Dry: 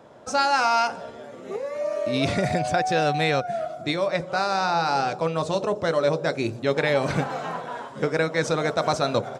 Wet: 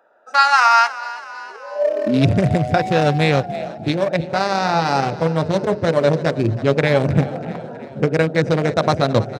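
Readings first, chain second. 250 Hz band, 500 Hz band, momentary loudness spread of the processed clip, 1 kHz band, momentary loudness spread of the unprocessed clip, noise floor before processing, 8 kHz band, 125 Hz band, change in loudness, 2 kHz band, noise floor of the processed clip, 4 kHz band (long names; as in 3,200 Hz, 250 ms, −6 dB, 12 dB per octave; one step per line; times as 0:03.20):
+8.5 dB, +5.5 dB, 14 LU, +5.5 dB, 9 LU, −41 dBFS, +1.0 dB, +11.5 dB, +6.5 dB, +5.5 dB, −36 dBFS, +3.5 dB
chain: adaptive Wiener filter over 41 samples
echo with shifted repeats 321 ms, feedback 57%, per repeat +35 Hz, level −17 dB
high-pass filter sweep 1,200 Hz → 97 Hz, 0:01.63–0:02.31
level +7 dB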